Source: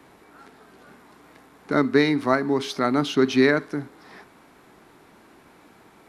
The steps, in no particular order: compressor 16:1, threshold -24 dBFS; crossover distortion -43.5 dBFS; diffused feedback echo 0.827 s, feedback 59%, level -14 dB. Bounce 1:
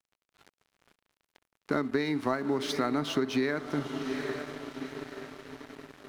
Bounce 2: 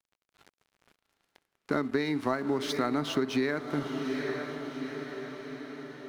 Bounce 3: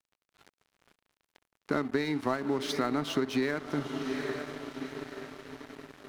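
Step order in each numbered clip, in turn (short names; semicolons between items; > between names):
diffused feedback echo > crossover distortion > compressor; crossover distortion > diffused feedback echo > compressor; diffused feedback echo > compressor > crossover distortion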